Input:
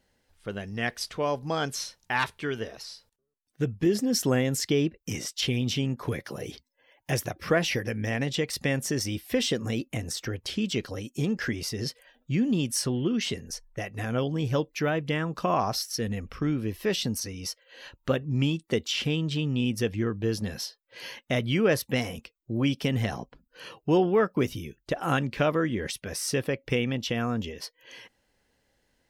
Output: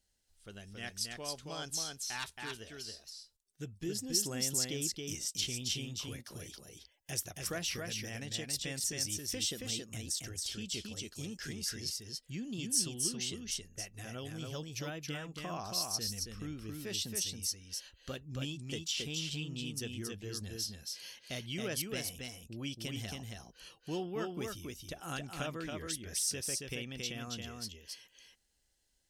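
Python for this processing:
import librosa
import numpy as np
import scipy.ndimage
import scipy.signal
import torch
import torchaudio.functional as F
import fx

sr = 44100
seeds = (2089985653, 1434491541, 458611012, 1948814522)

p1 = fx.graphic_eq_10(x, sr, hz=(125, 250, 500, 1000, 2000, 8000), db=(-9, -8, -10, -9, -8, 6))
p2 = p1 + fx.echo_single(p1, sr, ms=274, db=-3.5, dry=0)
y = F.gain(torch.from_numpy(p2), -5.0).numpy()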